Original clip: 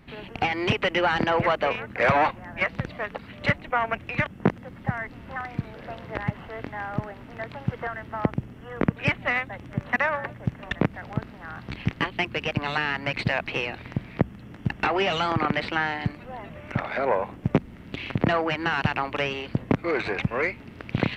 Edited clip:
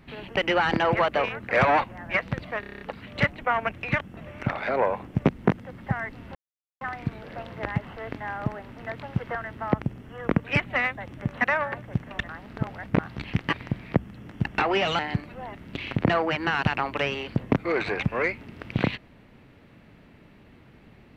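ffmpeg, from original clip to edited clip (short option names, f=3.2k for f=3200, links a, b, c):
-filter_complex "[0:a]asplit=17[a][b][c][d][e][f][g][h][i][j][k][l][m][n][o][p][q];[a]atrim=end=0.372[r];[b]atrim=start=0.838:end=3.102[s];[c]atrim=start=3.068:end=3.102[t];[d]atrim=start=3.068:end=3.102[u];[e]atrim=start=3.068:end=3.102[v];[f]atrim=start=3.068:end=3.102[w];[g]atrim=start=3.068:end=3.102[x];[h]atrim=start=3.068:end=3.102[y];[i]atrim=start=3.068:end=4.432[z];[j]atrim=start=16.458:end=17.742[aa];[k]atrim=start=4.428:end=5.33,asetpts=PTS-STARTPTS,afade=t=out:st=0.898:d=0.004:c=hsin,apad=pad_dur=0.46[ab];[l]atrim=start=5.33:end=10.812,asetpts=PTS-STARTPTS,afade=t=in:d=0.004:c=hsin[ac];[m]atrim=start=10.808:end=11.512,asetpts=PTS-STARTPTS,areverse[ad];[n]atrim=start=11.508:end=12.052[ae];[o]atrim=start=13.778:end=15.242[af];[p]atrim=start=15.898:end=16.462[ag];[q]atrim=start=17.738[ah];[r][s]acrossfade=d=0.004:c1=hsin:c2=hsin[ai];[ai][t]acrossfade=d=0.004:c1=hsin:c2=hsin[aj];[aj][u]acrossfade=d=0.004:c1=hsin:c2=hsin[ak];[ak][v]acrossfade=d=0.004:c1=hsin:c2=hsin[al];[al][w]acrossfade=d=0.004:c1=hsin:c2=hsin[am];[am][x]acrossfade=d=0.004:c1=hsin:c2=hsin[an];[an][y]acrossfade=d=0.004:c1=hsin:c2=hsin[ao];[ao][z]acrossfade=d=0.004:c1=hsin:c2=hsin[ap];[ap][aa]acrossfade=d=0.004:c1=hsin:c2=hsin[aq];[ab][ac]concat=n=2:v=0:a=1[ar];[aq][ar]acrossfade=d=0.004:c1=hsin:c2=hsin[as];[as][ad]acrossfade=d=0.004:c1=hsin:c2=hsin[at];[at][ae]acrossfade=d=0.004:c1=hsin:c2=hsin[au];[au][af]acrossfade=d=0.004:c1=hsin:c2=hsin[av];[av][ag]acrossfade=d=0.004:c1=hsin:c2=hsin[aw];[aw][ah]acrossfade=d=0.004:c1=hsin:c2=hsin"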